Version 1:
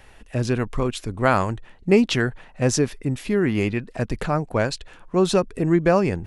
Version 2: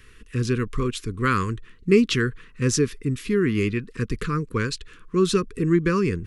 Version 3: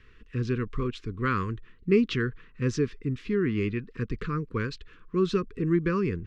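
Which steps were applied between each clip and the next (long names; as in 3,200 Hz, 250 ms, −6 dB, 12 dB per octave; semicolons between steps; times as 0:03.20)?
Chebyshev band-stop filter 460–1,100 Hz, order 3
high-frequency loss of the air 180 metres; level −4.5 dB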